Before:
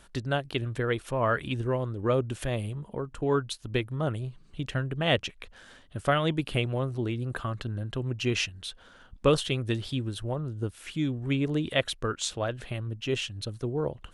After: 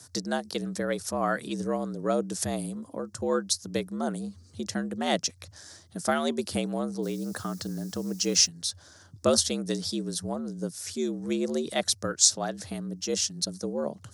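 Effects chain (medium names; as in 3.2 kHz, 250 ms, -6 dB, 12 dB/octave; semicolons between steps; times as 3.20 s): 7.02–8.46 s: added noise white -63 dBFS; resonant high shelf 3.9 kHz +11 dB, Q 3; frequency shift +74 Hz; trim -1 dB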